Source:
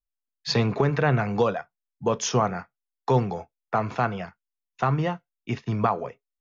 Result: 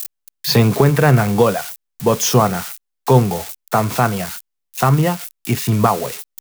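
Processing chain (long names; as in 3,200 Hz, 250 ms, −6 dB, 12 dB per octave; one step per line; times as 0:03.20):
spike at every zero crossing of −23 dBFS
low-shelf EQ 370 Hz +4 dB
level +7 dB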